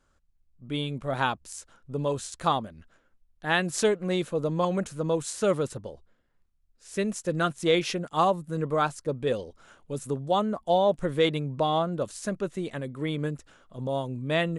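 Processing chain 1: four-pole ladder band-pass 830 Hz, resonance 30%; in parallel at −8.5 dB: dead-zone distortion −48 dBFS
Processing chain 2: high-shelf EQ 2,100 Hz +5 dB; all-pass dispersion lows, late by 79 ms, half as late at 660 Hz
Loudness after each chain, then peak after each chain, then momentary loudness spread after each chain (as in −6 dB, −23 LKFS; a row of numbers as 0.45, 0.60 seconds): −38.0, −27.5 LKFS; −18.0, −9.0 dBFS; 17, 14 LU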